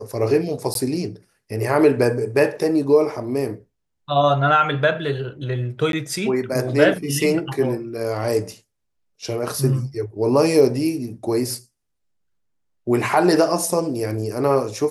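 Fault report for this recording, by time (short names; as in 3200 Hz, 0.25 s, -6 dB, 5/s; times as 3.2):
0.74–0.75 gap 12 ms
5.92–5.93 gap 12 ms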